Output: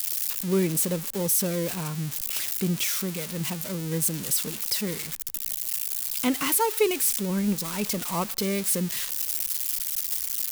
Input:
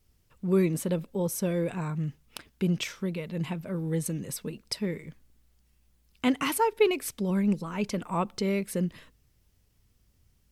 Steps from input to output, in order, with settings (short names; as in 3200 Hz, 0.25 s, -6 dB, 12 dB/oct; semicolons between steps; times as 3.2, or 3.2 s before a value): switching spikes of -19.5 dBFS